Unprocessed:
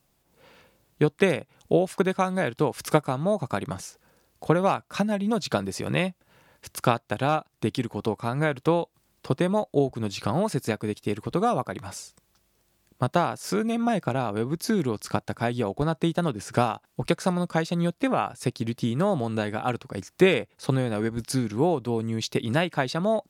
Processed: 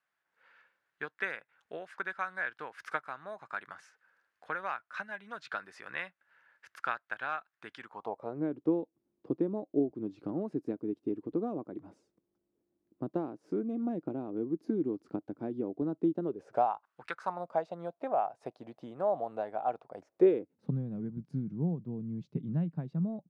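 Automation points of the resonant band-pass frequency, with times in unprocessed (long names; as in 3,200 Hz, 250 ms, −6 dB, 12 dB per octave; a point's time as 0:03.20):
resonant band-pass, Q 3.8
0:07.80 1,600 Hz
0:08.43 310 Hz
0:16.19 310 Hz
0:17.06 1,700 Hz
0:17.42 690 Hz
0:19.99 690 Hz
0:20.75 170 Hz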